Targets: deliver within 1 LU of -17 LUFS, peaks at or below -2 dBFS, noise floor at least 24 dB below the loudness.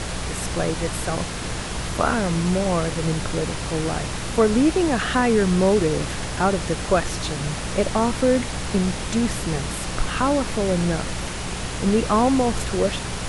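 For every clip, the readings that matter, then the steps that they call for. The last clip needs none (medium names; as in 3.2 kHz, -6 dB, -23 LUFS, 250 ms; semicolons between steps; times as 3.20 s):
hum 60 Hz; highest harmonic 180 Hz; hum level -32 dBFS; noise floor -29 dBFS; noise floor target -47 dBFS; loudness -22.5 LUFS; peak level -5.5 dBFS; loudness target -17.0 LUFS
-> de-hum 60 Hz, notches 3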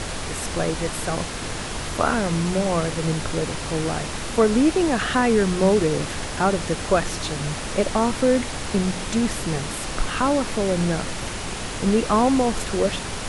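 hum not found; noise floor -30 dBFS; noise floor target -47 dBFS
-> noise print and reduce 17 dB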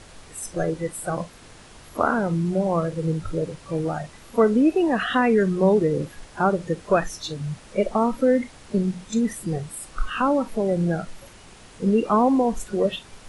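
noise floor -47 dBFS; noise floor target -48 dBFS
-> noise print and reduce 6 dB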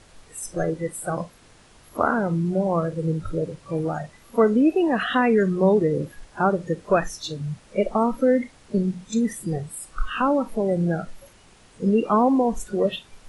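noise floor -53 dBFS; loudness -23.5 LUFS; peak level -6.5 dBFS; loudness target -17.0 LUFS
-> trim +6.5 dB; peak limiter -2 dBFS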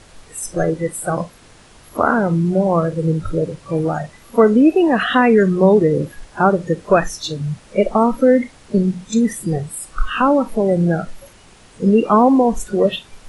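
loudness -17.0 LUFS; peak level -2.0 dBFS; noise floor -46 dBFS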